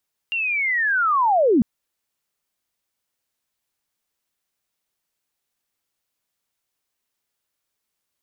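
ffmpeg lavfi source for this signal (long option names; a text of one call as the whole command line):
ffmpeg -f lavfi -i "aevalsrc='pow(10,(-21+8.5*t/1.3)/20)*sin(2*PI*(2800*t-2600*t*t/(2*1.3)))':duration=1.3:sample_rate=44100" out.wav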